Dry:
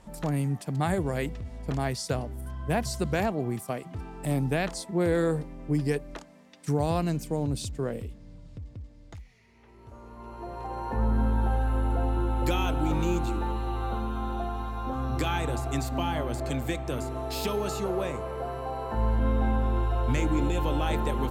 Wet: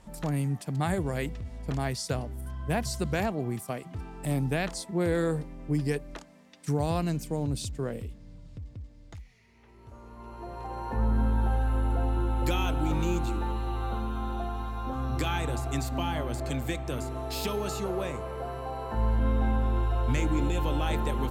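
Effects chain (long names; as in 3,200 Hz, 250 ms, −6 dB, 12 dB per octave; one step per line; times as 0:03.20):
parametric band 540 Hz −2.5 dB 2.8 octaves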